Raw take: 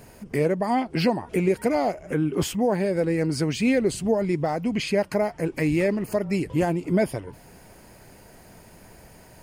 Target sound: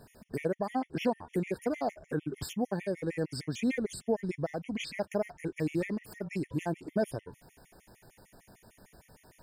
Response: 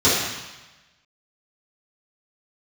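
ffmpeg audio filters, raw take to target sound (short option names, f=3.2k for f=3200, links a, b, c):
-af "afftfilt=real='re*gt(sin(2*PI*6.6*pts/sr)*(1-2*mod(floor(b*sr/1024/1800),2)),0)':imag='im*gt(sin(2*PI*6.6*pts/sr)*(1-2*mod(floor(b*sr/1024/1800),2)),0)':win_size=1024:overlap=0.75,volume=-6.5dB"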